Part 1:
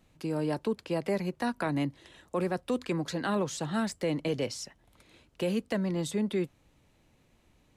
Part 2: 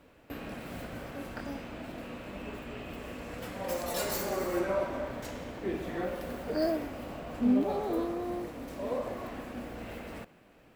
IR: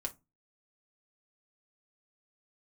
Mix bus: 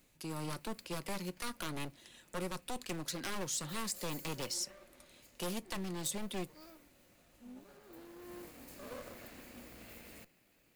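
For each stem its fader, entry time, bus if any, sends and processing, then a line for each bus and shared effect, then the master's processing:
+2.0 dB, 0.00 s, send -8 dB, one-sided fold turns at -31.5 dBFS
+0.5 dB, 0.00 s, send -20.5 dB, minimum comb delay 0.44 ms; auto duck -18 dB, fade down 0.35 s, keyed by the first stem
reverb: on, RT60 0.20 s, pre-delay 3 ms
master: pre-emphasis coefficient 0.8

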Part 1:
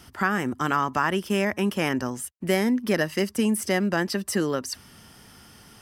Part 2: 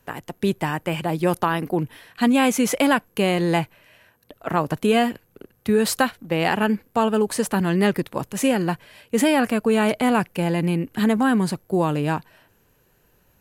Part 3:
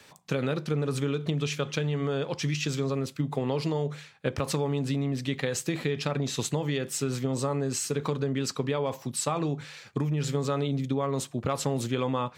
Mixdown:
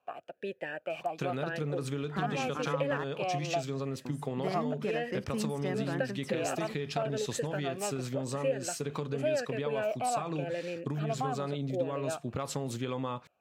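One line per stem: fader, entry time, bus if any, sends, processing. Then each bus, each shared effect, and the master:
-8.5 dB, 1.95 s, muted 3.04–4.05, no send, LPF 1700 Hz 6 dB/oct; hard clip -14 dBFS, distortion -28 dB
+0.5 dB, 0.00 s, no send, vowel sweep a-e 0.89 Hz
-4.5 dB, 0.90 s, no send, dry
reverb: off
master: compressor 2:1, threshold -31 dBFS, peak gain reduction 7.5 dB

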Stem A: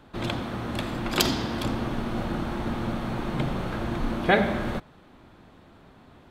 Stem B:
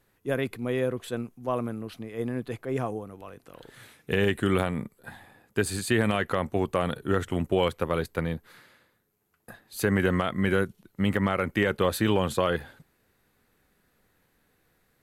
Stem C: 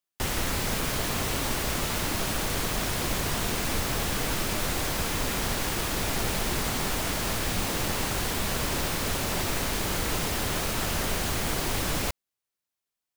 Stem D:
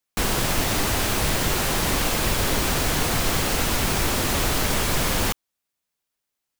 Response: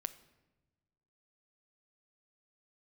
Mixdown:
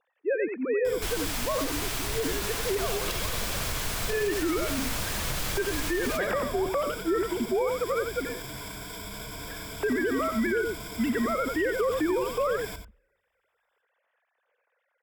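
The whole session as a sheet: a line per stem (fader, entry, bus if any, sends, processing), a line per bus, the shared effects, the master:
-12.5 dB, 1.90 s, no send, no echo send, comb 1.8 ms, depth 100%
+0.5 dB, 0.00 s, send -20.5 dB, echo send -7.5 dB, sine-wave speech
-8.5 dB, 0.65 s, send -21 dB, echo send -9.5 dB, ripple EQ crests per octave 1.7, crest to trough 15 dB; limiter -22 dBFS, peak gain reduction 9 dB
-7.5 dB, 0.85 s, no send, echo send -11.5 dB, bell 280 Hz -14 dB 2.2 oct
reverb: on, pre-delay 7 ms
echo: echo 89 ms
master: limiter -19 dBFS, peak gain reduction 9.5 dB

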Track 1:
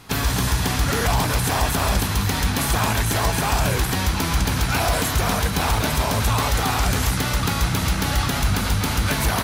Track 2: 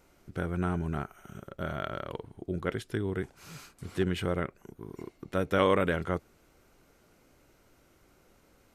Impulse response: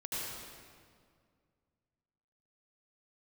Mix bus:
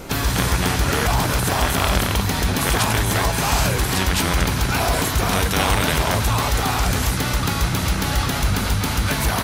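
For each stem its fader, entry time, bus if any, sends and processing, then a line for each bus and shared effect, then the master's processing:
+0.5 dB, 0.00 s, no send, dry
+2.5 dB, 0.00 s, no send, low shelf 340 Hz +11 dB; spectral compressor 4:1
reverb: off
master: dry

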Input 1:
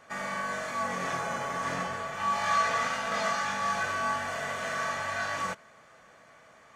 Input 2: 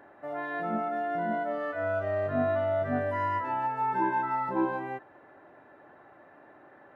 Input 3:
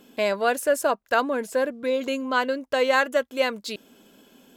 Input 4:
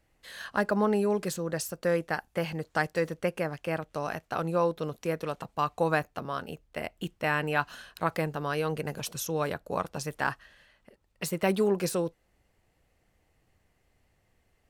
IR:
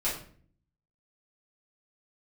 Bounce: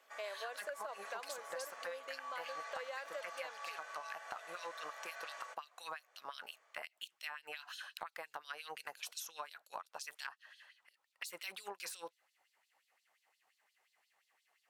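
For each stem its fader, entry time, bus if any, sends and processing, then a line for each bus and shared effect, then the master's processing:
-14.5 dB, 0.00 s, bus A, no send, dry
off
-10.5 dB, 0.00 s, bus A, no send, upward expander 1.5:1, over -29 dBFS
-3.5 dB, 0.00 s, bus B, no send, LFO high-pass sine 5.7 Hz 790–4300 Hz
bus A: 0.0 dB, HPF 490 Hz 24 dB/oct; limiter -27.5 dBFS, peak gain reduction 7 dB
bus B: 0.0 dB, compressor, threshold -36 dBFS, peak gain reduction 14 dB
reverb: off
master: compressor 3:1, threshold -43 dBFS, peak gain reduction 10.5 dB

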